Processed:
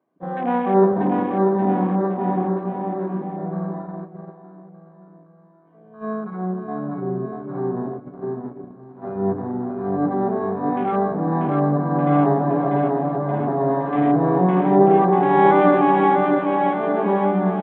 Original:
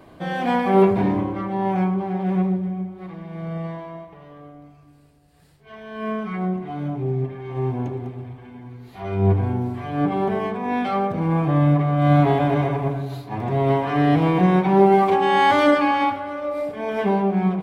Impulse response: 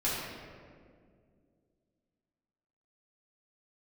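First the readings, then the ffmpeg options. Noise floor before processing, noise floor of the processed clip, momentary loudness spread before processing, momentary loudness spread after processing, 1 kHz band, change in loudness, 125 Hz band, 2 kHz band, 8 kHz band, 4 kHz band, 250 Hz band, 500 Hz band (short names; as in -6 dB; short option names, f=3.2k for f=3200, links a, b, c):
-50 dBFS, -49 dBFS, 16 LU, 15 LU, +2.0 dB, +0.5 dB, -3.5 dB, -3.0 dB, n/a, under -10 dB, +1.0 dB, +2.0 dB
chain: -af "lowpass=1.4k,crystalizer=i=2:c=0,highpass=f=170:w=0.5412,highpass=f=170:w=1.3066,afwtdn=0.0282,aecho=1:1:640|1216|1734|2201|2621:0.631|0.398|0.251|0.158|0.1,agate=range=-9dB:threshold=-30dB:ratio=16:detection=peak"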